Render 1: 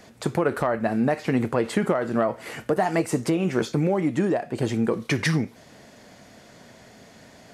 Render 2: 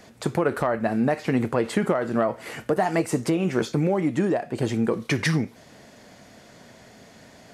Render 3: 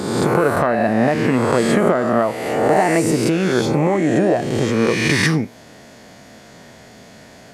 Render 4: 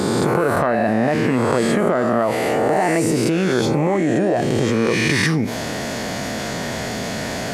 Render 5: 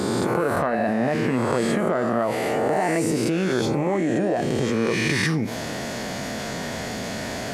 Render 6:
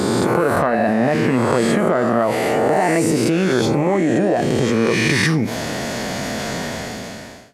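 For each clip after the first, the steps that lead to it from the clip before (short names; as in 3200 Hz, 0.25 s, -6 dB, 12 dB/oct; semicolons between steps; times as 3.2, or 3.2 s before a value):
nothing audible
spectral swells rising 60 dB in 1.41 s; gain +3.5 dB
fast leveller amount 70%; gain -4 dB
flange 0.27 Hz, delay 2.9 ms, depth 3.2 ms, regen -83%
ending faded out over 0.98 s; gain +5.5 dB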